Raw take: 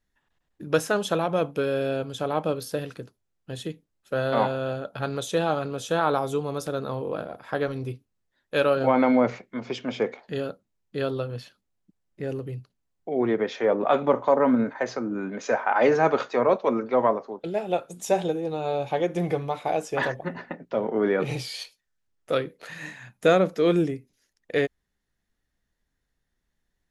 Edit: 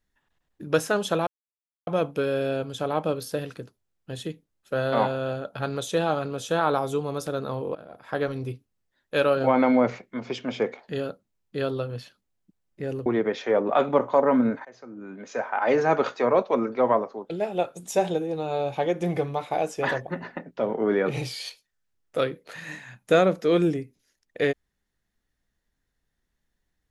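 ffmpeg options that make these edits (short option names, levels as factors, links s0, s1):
-filter_complex "[0:a]asplit=5[s0][s1][s2][s3][s4];[s0]atrim=end=1.27,asetpts=PTS-STARTPTS,afade=t=out:st=1.266:d=0.004:c=hsin,apad=pad_dur=0.6[s5];[s1]atrim=start=1.27:end=7.15,asetpts=PTS-STARTPTS,afade=t=in:d=0.004:c=hsin,afade=t=out:st=5.876:d=0.004:c=hsin:silence=0.133352[s6];[s2]atrim=start=7.15:end=12.462,asetpts=PTS-STARTPTS,afade=t=in:d=0.44:silence=0.133352[s7];[s3]atrim=start=13.198:end=14.79,asetpts=PTS-STARTPTS,afade=t=out:st=1.588:d=0.004:c=hsin:silence=0.0668344[s8];[s4]atrim=start=14.79,asetpts=PTS-STARTPTS,afade=t=in:d=1.39:silence=0.0668344[s9];[s5][s6][s7]concat=n=3:v=0:a=1[s10];[s8][s9]concat=n=2:v=0:a=1[s11];[s10][s11]acrossfade=d=0.004:c1=hsin:c2=hsin"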